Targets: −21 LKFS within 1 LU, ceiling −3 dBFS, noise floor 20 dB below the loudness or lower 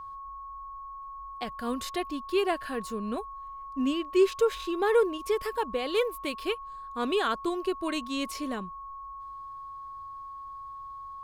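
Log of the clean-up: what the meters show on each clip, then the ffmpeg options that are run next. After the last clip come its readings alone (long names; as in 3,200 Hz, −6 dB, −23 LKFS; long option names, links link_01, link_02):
interfering tone 1,100 Hz; level of the tone −39 dBFS; integrated loudness −30.0 LKFS; sample peak −13.0 dBFS; target loudness −21.0 LKFS
→ -af "bandreject=frequency=1100:width=30"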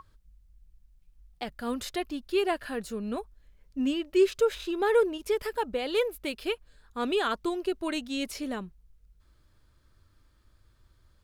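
interfering tone none found; integrated loudness −30.0 LKFS; sample peak −13.0 dBFS; target loudness −21.0 LKFS
→ -af "volume=9dB"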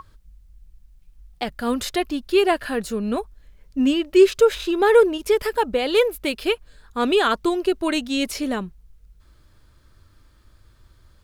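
integrated loudness −21.0 LKFS; sample peak −4.0 dBFS; background noise floor −55 dBFS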